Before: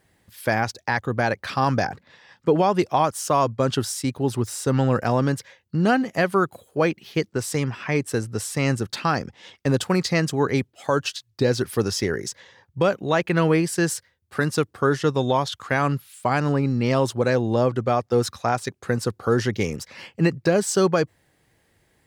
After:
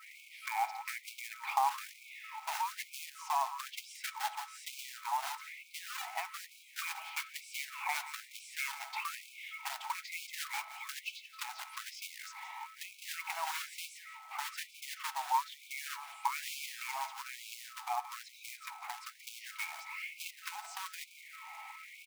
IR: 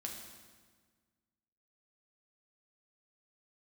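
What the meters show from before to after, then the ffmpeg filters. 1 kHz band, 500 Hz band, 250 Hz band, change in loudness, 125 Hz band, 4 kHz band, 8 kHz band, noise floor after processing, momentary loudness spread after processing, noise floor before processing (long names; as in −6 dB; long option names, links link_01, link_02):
−11.0 dB, −35.0 dB, below −40 dB, −16.5 dB, below −40 dB, −10.0 dB, −12.0 dB, −57 dBFS, 10 LU, −66 dBFS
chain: -filter_complex "[0:a]aeval=exprs='val(0)+0.5*0.015*sgn(val(0))':channel_layout=same,adynamicequalizer=threshold=0.00708:dfrequency=2900:dqfactor=1.2:tfrequency=2900:tqfactor=1.2:attack=5:release=100:ratio=0.375:range=2.5:mode=cutabove:tftype=bell,acompressor=threshold=-25dB:ratio=5,aeval=exprs='val(0)+0.00794*sin(2*PI*1300*n/s)':channel_layout=same,asplit=3[link_01][link_02][link_03];[link_01]bandpass=frequency=300:width_type=q:width=8,volume=0dB[link_04];[link_02]bandpass=frequency=870:width_type=q:width=8,volume=-6dB[link_05];[link_03]bandpass=frequency=2240:width_type=q:width=8,volume=-9dB[link_06];[link_04][link_05][link_06]amix=inputs=3:normalize=0,acrusher=bits=3:mode=log:mix=0:aa=0.000001,aecho=1:1:173:0.224,asplit=2[link_07][link_08];[1:a]atrim=start_sample=2205,lowpass=2900[link_09];[link_08][link_09]afir=irnorm=-1:irlink=0,volume=-5dB[link_10];[link_07][link_10]amix=inputs=2:normalize=0,afftfilt=real='re*gte(b*sr/1024,630*pow(2200/630,0.5+0.5*sin(2*PI*1.1*pts/sr)))':imag='im*gte(b*sr/1024,630*pow(2200/630,0.5+0.5*sin(2*PI*1.1*pts/sr)))':win_size=1024:overlap=0.75,volume=10.5dB"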